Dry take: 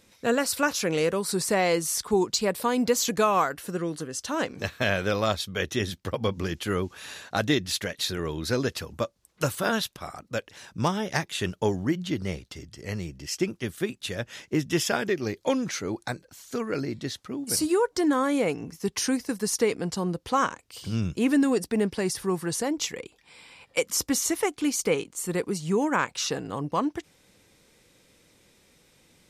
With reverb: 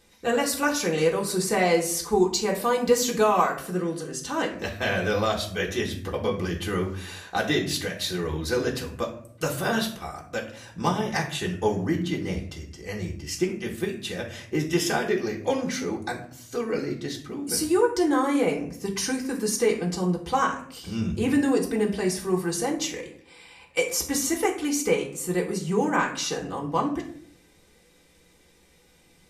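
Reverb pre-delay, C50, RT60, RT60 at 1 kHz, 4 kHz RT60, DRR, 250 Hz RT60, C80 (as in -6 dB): 3 ms, 9.0 dB, 0.65 s, 0.55 s, 0.35 s, -3.0 dB, 0.80 s, 13.0 dB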